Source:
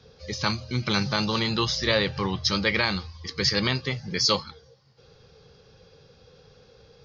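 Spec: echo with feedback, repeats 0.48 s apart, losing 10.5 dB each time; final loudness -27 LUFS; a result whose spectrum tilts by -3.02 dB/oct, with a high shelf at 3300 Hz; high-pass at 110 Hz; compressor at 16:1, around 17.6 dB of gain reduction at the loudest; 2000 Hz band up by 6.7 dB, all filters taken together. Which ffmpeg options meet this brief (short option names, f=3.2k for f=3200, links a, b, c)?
-af "highpass=110,equalizer=f=2k:t=o:g=6.5,highshelf=f=3.3k:g=4.5,acompressor=threshold=-32dB:ratio=16,aecho=1:1:480|960|1440:0.299|0.0896|0.0269,volume=8.5dB"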